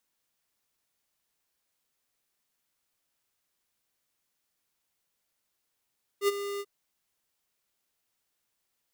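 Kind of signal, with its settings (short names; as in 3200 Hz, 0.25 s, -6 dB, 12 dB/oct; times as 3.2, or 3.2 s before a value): ADSR square 403 Hz, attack 71 ms, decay 25 ms, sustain -12 dB, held 0.39 s, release 49 ms -22.5 dBFS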